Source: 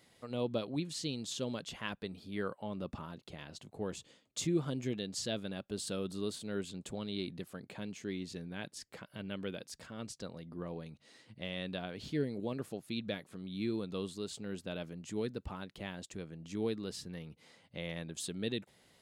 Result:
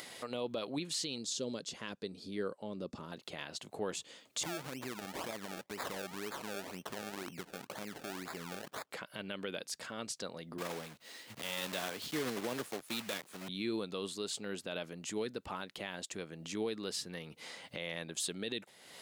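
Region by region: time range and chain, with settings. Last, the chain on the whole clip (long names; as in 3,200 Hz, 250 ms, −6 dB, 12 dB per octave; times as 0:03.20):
0:01.18–0:03.12: low-pass filter 8,000 Hz + flat-topped bell 1,500 Hz −10 dB 2.7 octaves
0:04.43–0:08.91: downward compressor 4 to 1, threshold −39 dBFS + sample-and-hold swept by an LFO 30× 2 Hz
0:10.58–0:13.49: one scale factor per block 3 bits + multiband upward and downward expander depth 40%
whole clip: high-pass filter 570 Hz 6 dB per octave; upward compression, threshold −45 dBFS; brickwall limiter −32.5 dBFS; level +6.5 dB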